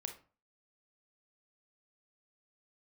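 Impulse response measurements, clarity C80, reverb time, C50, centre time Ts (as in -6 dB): 16.0 dB, 0.40 s, 10.0 dB, 13 ms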